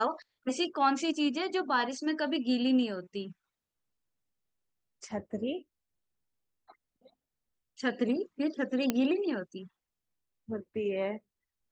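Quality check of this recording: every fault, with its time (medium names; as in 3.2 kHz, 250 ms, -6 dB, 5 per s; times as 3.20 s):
8.90 s: pop -13 dBFS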